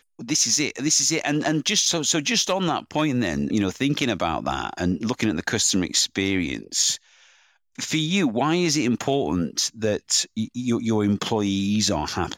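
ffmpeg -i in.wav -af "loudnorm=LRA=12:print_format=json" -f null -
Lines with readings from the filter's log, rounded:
"input_i" : "-22.6",
"input_tp" : "-7.9",
"input_lra" : "1.8",
"input_thresh" : "-32.7",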